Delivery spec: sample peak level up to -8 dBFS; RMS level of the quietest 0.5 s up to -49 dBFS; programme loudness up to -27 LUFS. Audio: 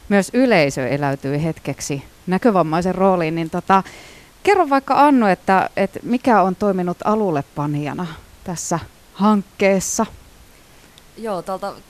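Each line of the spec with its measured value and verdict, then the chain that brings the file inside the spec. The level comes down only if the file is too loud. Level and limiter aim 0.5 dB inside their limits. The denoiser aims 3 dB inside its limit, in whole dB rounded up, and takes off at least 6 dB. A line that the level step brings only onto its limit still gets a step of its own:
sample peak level -2.5 dBFS: fail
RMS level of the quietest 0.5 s -47 dBFS: fail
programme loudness -18.5 LUFS: fail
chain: trim -9 dB

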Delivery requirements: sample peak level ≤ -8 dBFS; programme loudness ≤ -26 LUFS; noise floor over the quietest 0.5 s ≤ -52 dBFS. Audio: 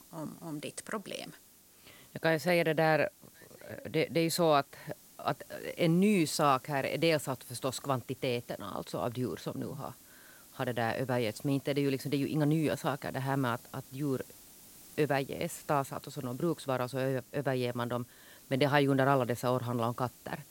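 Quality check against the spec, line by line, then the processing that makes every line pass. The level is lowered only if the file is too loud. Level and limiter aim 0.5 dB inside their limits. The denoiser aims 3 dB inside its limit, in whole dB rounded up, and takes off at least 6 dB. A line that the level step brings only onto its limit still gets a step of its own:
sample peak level -10.5 dBFS: pass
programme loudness -32.0 LUFS: pass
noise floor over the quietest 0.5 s -60 dBFS: pass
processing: none needed

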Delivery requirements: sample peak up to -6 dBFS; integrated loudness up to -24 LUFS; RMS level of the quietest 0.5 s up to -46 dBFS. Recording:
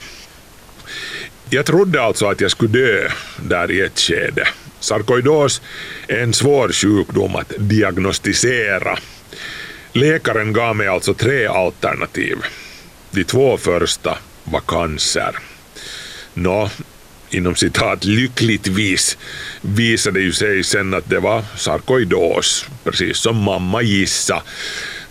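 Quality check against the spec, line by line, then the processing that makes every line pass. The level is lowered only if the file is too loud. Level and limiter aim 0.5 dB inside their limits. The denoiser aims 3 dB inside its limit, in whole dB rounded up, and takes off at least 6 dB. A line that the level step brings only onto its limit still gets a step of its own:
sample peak -4.0 dBFS: fail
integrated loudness -16.5 LUFS: fail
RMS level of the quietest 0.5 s -41 dBFS: fail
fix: trim -8 dB

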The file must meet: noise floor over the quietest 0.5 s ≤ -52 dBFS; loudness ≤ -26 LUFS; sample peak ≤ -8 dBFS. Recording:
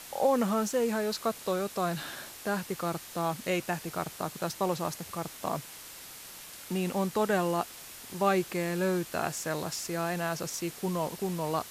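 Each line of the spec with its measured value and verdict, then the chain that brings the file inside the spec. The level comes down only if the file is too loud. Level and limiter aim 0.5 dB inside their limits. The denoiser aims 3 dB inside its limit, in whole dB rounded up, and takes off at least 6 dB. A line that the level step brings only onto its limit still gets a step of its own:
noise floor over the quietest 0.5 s -46 dBFS: fail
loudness -31.5 LUFS: pass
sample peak -13.5 dBFS: pass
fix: noise reduction 9 dB, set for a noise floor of -46 dBFS

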